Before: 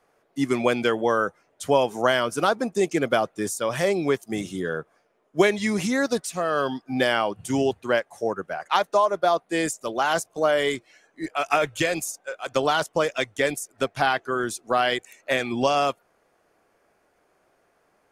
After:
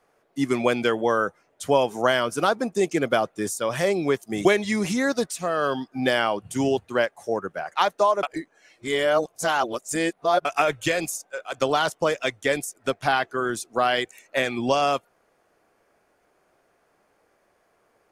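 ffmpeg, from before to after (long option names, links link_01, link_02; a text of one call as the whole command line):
ffmpeg -i in.wav -filter_complex "[0:a]asplit=4[link_01][link_02][link_03][link_04];[link_01]atrim=end=4.452[link_05];[link_02]atrim=start=5.388:end=9.172[link_06];[link_03]atrim=start=9.168:end=11.392,asetpts=PTS-STARTPTS,areverse[link_07];[link_04]atrim=start=11.388[link_08];[link_05][link_06]acrossfade=duration=0.004:curve1=hsin:curve2=hsin[link_09];[link_09][link_07]acrossfade=duration=0.004:curve1=hsin:curve2=hsin[link_10];[link_10][link_08]acrossfade=duration=0.004:curve1=hsin:curve2=hsin" out.wav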